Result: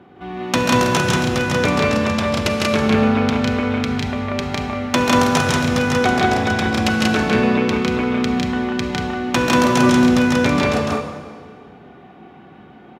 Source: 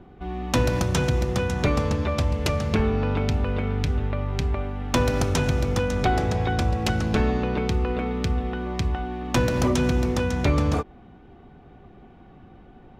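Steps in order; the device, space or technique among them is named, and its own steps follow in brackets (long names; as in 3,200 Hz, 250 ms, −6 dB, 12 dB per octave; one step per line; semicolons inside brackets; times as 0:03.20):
stadium PA (high-pass filter 150 Hz 12 dB per octave; parametric band 2,100 Hz +5 dB 2.7 octaves; loudspeakers that aren't time-aligned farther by 53 metres −2 dB, 64 metres −2 dB; convolution reverb RT60 1.9 s, pre-delay 33 ms, DRR 7.5 dB)
level +2 dB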